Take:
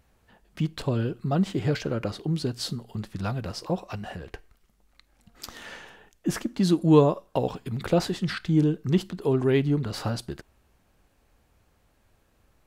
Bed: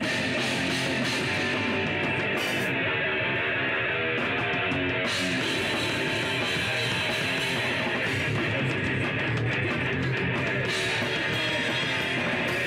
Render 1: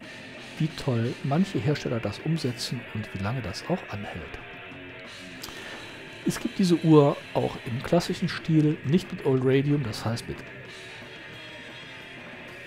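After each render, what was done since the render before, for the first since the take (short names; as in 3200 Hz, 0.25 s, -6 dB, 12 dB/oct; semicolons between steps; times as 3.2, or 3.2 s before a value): add bed -15 dB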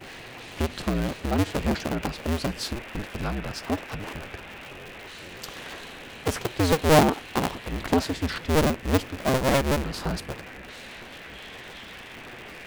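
cycle switcher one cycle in 2, inverted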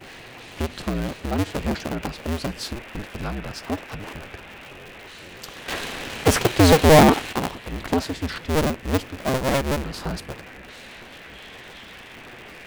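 5.68–7.33 sample leveller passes 3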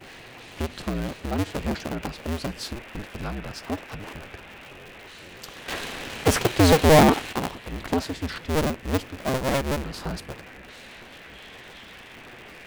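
gain -2.5 dB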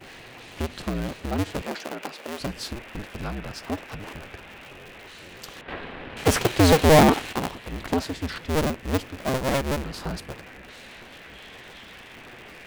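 1.62–2.4 HPF 350 Hz; 5.61–6.17 air absorption 460 m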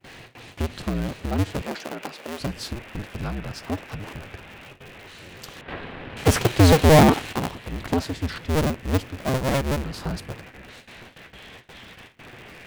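gate with hold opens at -35 dBFS; bell 110 Hz +6 dB 1.4 oct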